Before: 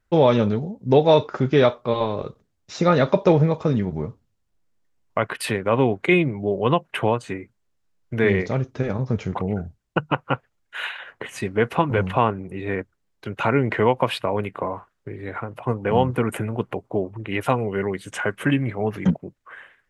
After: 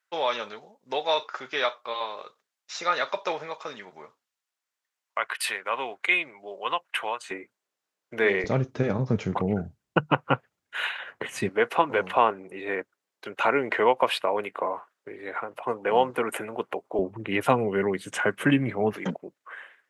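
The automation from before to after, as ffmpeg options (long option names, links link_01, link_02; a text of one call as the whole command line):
ffmpeg -i in.wav -af "asetnsamples=nb_out_samples=441:pad=0,asendcmd='7.31 highpass f 450;8.44 highpass f 120;11.49 highpass f 440;16.99 highpass f 160;18.93 highpass f 380',highpass=1100" out.wav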